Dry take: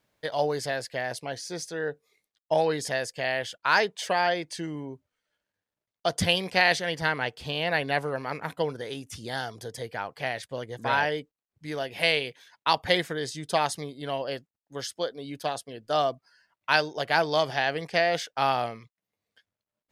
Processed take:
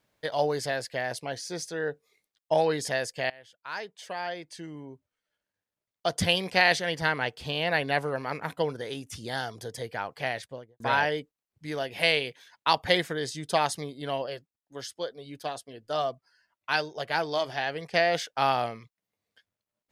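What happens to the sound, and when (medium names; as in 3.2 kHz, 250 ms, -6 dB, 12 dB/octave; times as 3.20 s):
3.30–6.56 s: fade in, from -23.5 dB
10.33–10.80 s: studio fade out
14.26–17.94 s: flange 1.1 Hz, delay 1.5 ms, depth 1.8 ms, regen -63%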